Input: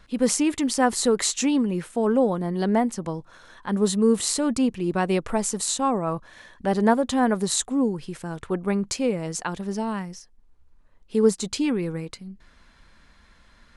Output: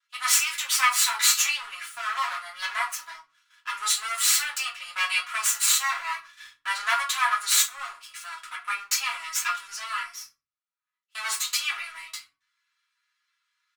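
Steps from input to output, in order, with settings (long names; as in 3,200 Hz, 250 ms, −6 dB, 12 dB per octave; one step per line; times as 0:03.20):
lower of the sound and its delayed copy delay 3 ms
elliptic high-pass filter 1,200 Hz, stop band 80 dB
noise gate −50 dBFS, range −20 dB
comb filter 7.2 ms, depth 77%
in parallel at −9 dB: dead-zone distortion −50.5 dBFS
on the sum: rectangular room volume 120 cubic metres, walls furnished, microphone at 1.9 metres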